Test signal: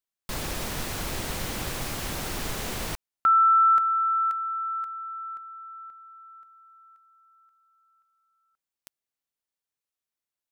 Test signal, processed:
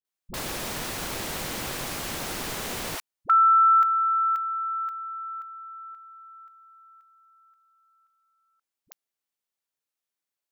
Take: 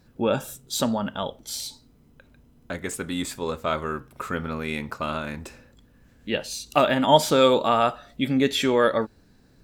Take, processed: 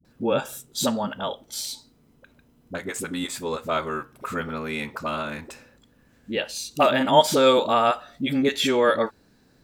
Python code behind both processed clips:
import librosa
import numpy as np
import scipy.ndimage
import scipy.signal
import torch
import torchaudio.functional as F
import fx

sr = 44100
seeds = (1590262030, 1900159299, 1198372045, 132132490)

y = fx.low_shelf(x, sr, hz=110.0, db=-11.0)
y = fx.dispersion(y, sr, late='highs', ms=49.0, hz=380.0)
y = F.gain(torch.from_numpy(y), 1.0).numpy()